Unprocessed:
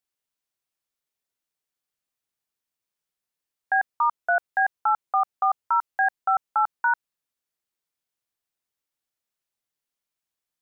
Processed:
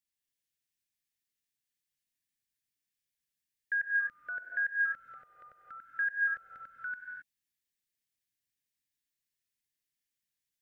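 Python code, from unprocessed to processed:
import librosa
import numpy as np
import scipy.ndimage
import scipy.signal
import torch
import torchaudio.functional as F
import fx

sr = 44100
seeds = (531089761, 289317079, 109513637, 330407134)

y = scipy.signal.sosfilt(scipy.signal.ellip(3, 1.0, 80, [520.0, 1700.0], 'bandstop', fs=sr, output='sos'), x)
y = fx.band_shelf(y, sr, hz=620.0, db=-10.0, octaves=1.7)
y = fx.rev_gated(y, sr, seeds[0], gate_ms=290, shape='rising', drr_db=0.5)
y = y * 10.0 ** (-3.5 / 20.0)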